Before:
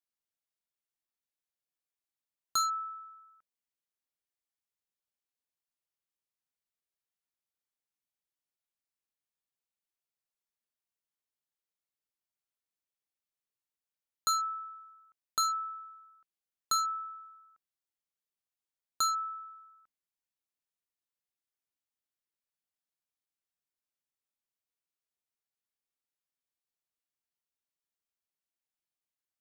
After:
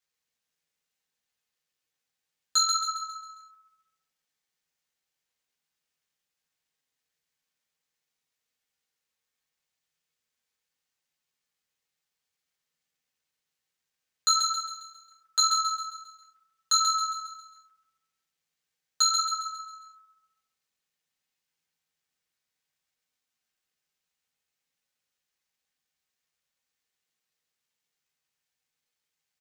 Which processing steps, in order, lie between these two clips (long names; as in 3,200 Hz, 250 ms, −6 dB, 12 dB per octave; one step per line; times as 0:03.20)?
high-pass filter 360 Hz 12 dB per octave
flat-topped bell 3,500 Hz +12 dB 2.6 octaves
comb filter 3.9 ms, depth 30%
dynamic equaliser 470 Hz, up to +7 dB, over −56 dBFS, Q 3.9
in parallel at −2.5 dB: brickwall limiter −16 dBFS, peak gain reduction 8.5 dB
on the sum: flanger 0.73 Hz, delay 6.8 ms, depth 7.1 ms, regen −4%
log-companded quantiser 8 bits
repeating echo 135 ms, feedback 46%, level −5 dB
convolution reverb RT60 0.60 s, pre-delay 3 ms, DRR 2 dB
level −4.5 dB